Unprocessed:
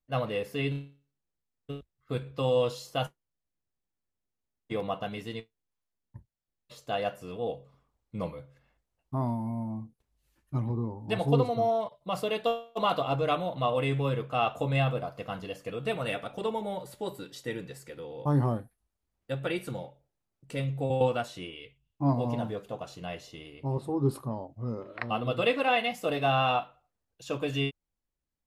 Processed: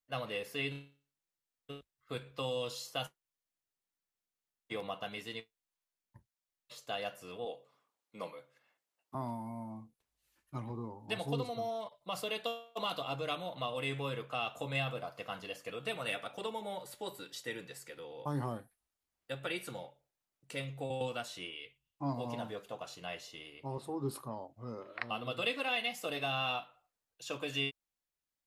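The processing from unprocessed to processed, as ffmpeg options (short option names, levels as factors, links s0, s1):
-filter_complex "[0:a]asettb=1/sr,asplit=3[s0][s1][s2];[s0]atrim=end=7.454[s3];[s1]atrim=start=7.45:end=9.15,asetpts=PTS-STARTPTS,afade=t=in:d=0.004:c=qsin,afade=t=out:st=1.696:d=0.004:c=qsin,highpass=250[s4];[s2]atrim=start=9.146[s5];[s3][s4]acrossfade=d=0.004:c1=hsin:c2=qsin[s6];[s6][s5]acrossfade=d=0.004:c1=qsin:c2=hsin,lowshelf=f=120:g=-7,acrossover=split=350|3000[s7][s8][s9];[s8]acompressor=threshold=0.0224:ratio=6[s10];[s7][s10][s9]amix=inputs=3:normalize=0,tiltshelf=f=650:g=-5,volume=0.596"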